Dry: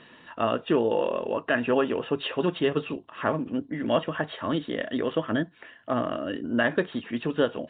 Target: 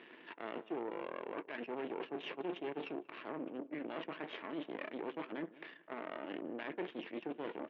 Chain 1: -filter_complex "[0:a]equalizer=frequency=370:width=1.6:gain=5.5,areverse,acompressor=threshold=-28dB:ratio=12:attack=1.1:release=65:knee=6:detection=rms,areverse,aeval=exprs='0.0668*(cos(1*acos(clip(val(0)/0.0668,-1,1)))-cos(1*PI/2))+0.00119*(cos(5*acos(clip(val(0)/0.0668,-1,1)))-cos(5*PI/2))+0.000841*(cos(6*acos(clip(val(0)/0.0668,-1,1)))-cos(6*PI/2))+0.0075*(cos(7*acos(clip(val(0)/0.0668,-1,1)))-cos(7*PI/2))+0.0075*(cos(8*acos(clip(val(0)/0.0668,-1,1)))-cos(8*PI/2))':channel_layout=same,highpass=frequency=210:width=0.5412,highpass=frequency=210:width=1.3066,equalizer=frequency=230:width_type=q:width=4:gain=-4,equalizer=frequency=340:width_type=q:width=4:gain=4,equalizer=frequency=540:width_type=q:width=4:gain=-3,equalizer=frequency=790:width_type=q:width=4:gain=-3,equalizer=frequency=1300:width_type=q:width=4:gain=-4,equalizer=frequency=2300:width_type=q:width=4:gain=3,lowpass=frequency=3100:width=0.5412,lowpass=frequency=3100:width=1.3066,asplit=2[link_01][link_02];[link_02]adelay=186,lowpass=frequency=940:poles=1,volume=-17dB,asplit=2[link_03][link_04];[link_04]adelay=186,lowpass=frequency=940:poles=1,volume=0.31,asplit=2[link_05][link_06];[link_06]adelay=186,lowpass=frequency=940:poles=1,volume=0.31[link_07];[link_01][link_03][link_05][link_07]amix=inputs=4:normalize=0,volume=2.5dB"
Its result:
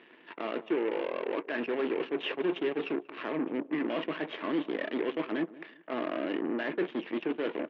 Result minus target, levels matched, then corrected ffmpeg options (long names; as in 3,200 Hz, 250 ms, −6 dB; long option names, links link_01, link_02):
downward compressor: peak gain reduction −7.5 dB
-filter_complex "[0:a]equalizer=frequency=370:width=1.6:gain=5.5,areverse,acompressor=threshold=-36dB:ratio=12:attack=1.1:release=65:knee=6:detection=rms,areverse,aeval=exprs='0.0668*(cos(1*acos(clip(val(0)/0.0668,-1,1)))-cos(1*PI/2))+0.00119*(cos(5*acos(clip(val(0)/0.0668,-1,1)))-cos(5*PI/2))+0.000841*(cos(6*acos(clip(val(0)/0.0668,-1,1)))-cos(6*PI/2))+0.0075*(cos(7*acos(clip(val(0)/0.0668,-1,1)))-cos(7*PI/2))+0.0075*(cos(8*acos(clip(val(0)/0.0668,-1,1)))-cos(8*PI/2))':channel_layout=same,highpass=frequency=210:width=0.5412,highpass=frequency=210:width=1.3066,equalizer=frequency=230:width_type=q:width=4:gain=-4,equalizer=frequency=340:width_type=q:width=4:gain=4,equalizer=frequency=540:width_type=q:width=4:gain=-3,equalizer=frequency=790:width_type=q:width=4:gain=-3,equalizer=frequency=1300:width_type=q:width=4:gain=-4,equalizer=frequency=2300:width_type=q:width=4:gain=3,lowpass=frequency=3100:width=0.5412,lowpass=frequency=3100:width=1.3066,asplit=2[link_01][link_02];[link_02]adelay=186,lowpass=frequency=940:poles=1,volume=-17dB,asplit=2[link_03][link_04];[link_04]adelay=186,lowpass=frequency=940:poles=1,volume=0.31,asplit=2[link_05][link_06];[link_06]adelay=186,lowpass=frequency=940:poles=1,volume=0.31[link_07];[link_01][link_03][link_05][link_07]amix=inputs=4:normalize=0,volume=2.5dB"